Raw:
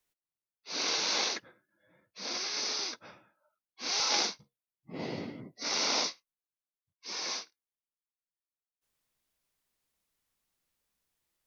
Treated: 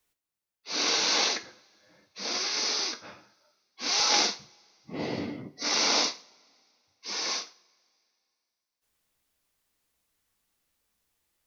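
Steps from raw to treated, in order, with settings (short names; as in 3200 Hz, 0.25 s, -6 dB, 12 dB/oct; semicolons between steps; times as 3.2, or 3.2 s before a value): two-slope reverb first 0.37 s, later 2.6 s, from -28 dB, DRR 8 dB; gain +4.5 dB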